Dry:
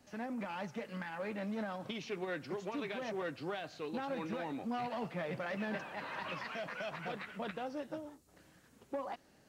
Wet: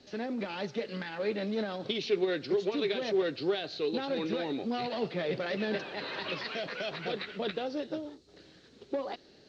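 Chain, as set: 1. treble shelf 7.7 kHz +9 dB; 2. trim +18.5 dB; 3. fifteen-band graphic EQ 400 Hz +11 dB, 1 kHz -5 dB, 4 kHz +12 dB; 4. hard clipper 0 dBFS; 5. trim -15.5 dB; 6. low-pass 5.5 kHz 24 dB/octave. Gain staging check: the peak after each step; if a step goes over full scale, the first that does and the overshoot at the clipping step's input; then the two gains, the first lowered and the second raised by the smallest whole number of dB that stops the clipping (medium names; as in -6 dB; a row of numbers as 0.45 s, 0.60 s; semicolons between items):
-27.0 dBFS, -8.5 dBFS, -2.5 dBFS, -2.5 dBFS, -18.0 dBFS, -18.0 dBFS; nothing clips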